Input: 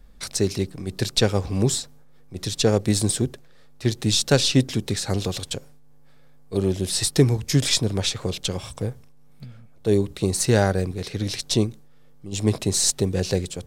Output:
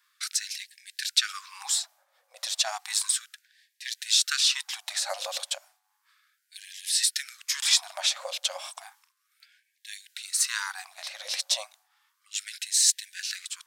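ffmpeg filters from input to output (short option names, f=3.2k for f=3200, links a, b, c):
-filter_complex "[0:a]acrossover=split=420|3000[a][b][c];[b]acompressor=threshold=-21dB:ratio=6[d];[a][d][c]amix=inputs=3:normalize=0,afftfilt=real='re*gte(b*sr/1024,510*pow(1600/510,0.5+0.5*sin(2*PI*0.33*pts/sr)))':imag='im*gte(b*sr/1024,510*pow(1600/510,0.5+0.5*sin(2*PI*0.33*pts/sr)))':win_size=1024:overlap=0.75"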